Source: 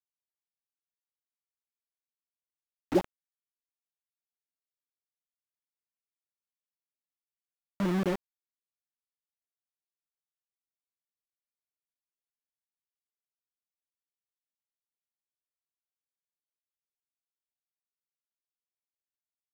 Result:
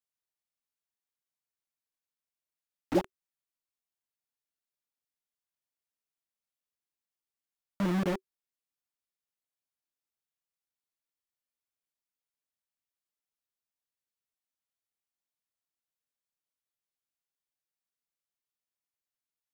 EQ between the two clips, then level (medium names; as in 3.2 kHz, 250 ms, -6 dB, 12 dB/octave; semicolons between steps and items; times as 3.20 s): band-stop 380 Hz, Q 12; 0.0 dB